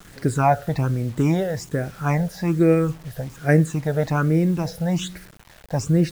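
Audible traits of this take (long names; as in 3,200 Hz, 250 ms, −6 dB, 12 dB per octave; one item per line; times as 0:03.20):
phaser sweep stages 8, 1.2 Hz, lowest notch 310–1,000 Hz
a quantiser's noise floor 8 bits, dither none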